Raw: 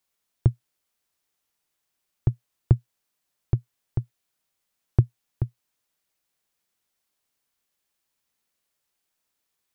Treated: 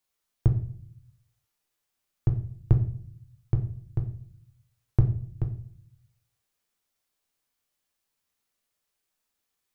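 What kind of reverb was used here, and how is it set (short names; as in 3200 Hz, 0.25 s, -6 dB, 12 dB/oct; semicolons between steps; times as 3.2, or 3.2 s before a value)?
shoebox room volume 62 m³, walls mixed, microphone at 0.43 m; gain -3 dB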